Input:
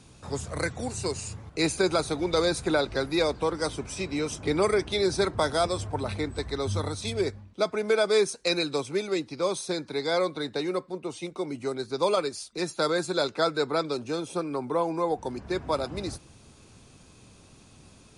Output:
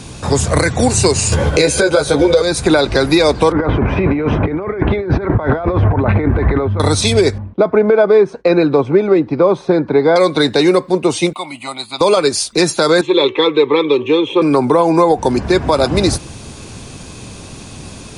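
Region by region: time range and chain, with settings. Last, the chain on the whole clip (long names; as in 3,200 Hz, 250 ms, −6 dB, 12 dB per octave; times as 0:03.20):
0:01.32–0:02.42: hollow resonant body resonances 520/1,500/3,200 Hz, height 14 dB + upward compression, threshold −26 dBFS + double-tracking delay 14 ms −2.5 dB
0:03.52–0:06.80: low-pass filter 2,000 Hz 24 dB per octave + compressor whose output falls as the input rises −36 dBFS
0:07.38–0:10.16: downward expander −53 dBFS + low-pass filter 1,300 Hz
0:11.33–0:12.01: high-pass filter 1,100 Hz 6 dB per octave + phaser with its sweep stopped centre 1,600 Hz, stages 6
0:13.01–0:14.42: loudspeaker in its box 140–4,200 Hz, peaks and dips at 760 Hz −7 dB, 1,400 Hz −4 dB, 3,200 Hz +9 dB + phaser with its sweep stopped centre 980 Hz, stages 8 + hum removal 380.6 Hz, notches 6
whole clip: notch filter 1,300 Hz, Q 19; downward compressor, threshold −27 dBFS; boost into a limiter +22 dB; level −1 dB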